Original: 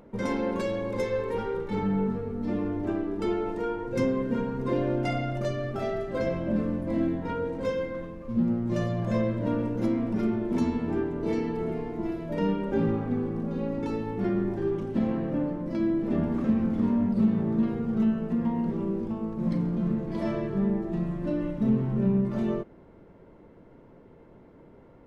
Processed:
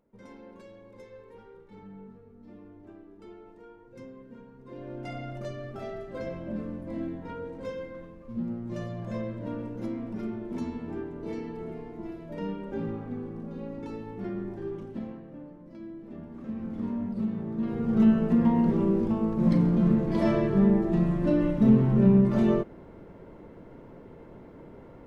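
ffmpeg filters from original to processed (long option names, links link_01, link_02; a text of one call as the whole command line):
ffmpeg -i in.wav -af "volume=13.5dB,afade=type=in:start_time=4.66:duration=0.61:silence=0.237137,afade=type=out:start_time=14.83:duration=0.4:silence=0.375837,afade=type=in:start_time=16.32:duration=0.52:silence=0.354813,afade=type=in:start_time=17.57:duration=0.53:silence=0.251189" out.wav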